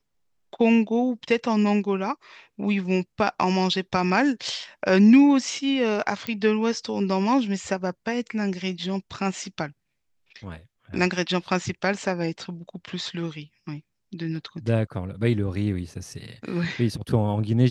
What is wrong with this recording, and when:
6.27 s: pop -14 dBFS

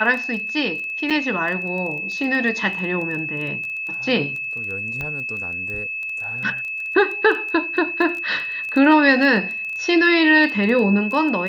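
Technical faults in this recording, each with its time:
crackle 12 per s -27 dBFS
whine 2.6 kHz -25 dBFS
1.10–1.11 s: dropout 6.3 ms
5.01 s: pop -15 dBFS

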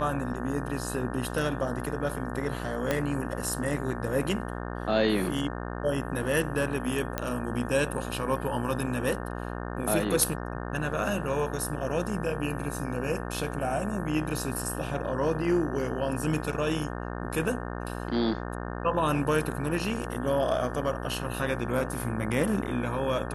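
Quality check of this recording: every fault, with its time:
buzz 60 Hz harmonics 30 -35 dBFS
2.91 s: pop -12 dBFS
7.18 s: pop -13 dBFS

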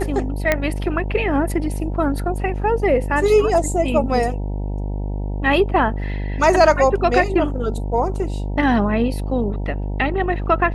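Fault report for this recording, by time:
buzz 50 Hz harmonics 19 -24 dBFS
0.52 s: pop -3 dBFS

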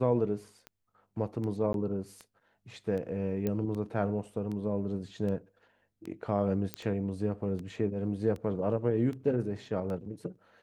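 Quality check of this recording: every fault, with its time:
tick 78 rpm -28 dBFS
1.73–1.74 s: dropout 12 ms
3.47 s: pop -19 dBFS
6.74 s: pop -17 dBFS

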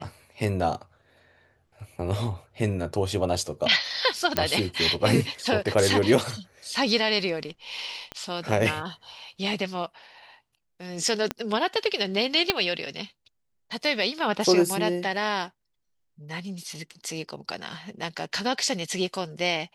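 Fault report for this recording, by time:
4.37 s: pop -6 dBFS
8.12 s: pop -20 dBFS
11.31 s: pop -12 dBFS
12.50 s: pop -6 dBFS

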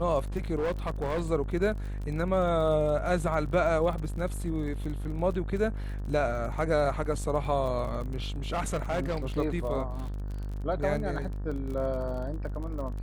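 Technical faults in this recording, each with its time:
buzz 50 Hz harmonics 37 -34 dBFS
crackle 37 per s -36 dBFS
0.57–1.30 s: clipped -25.5 dBFS
8.51–9.18 s: clipped -25 dBFS

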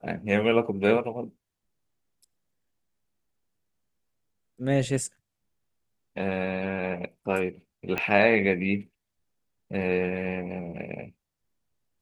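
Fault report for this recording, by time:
7.98 s: pop -14 dBFS

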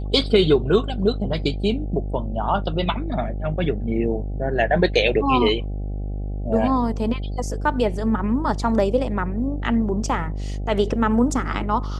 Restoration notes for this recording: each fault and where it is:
buzz 50 Hz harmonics 16 -27 dBFS

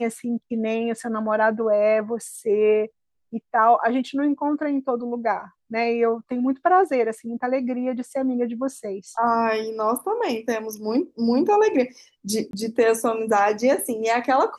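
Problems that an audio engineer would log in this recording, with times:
12.51–12.53 s: dropout 22 ms

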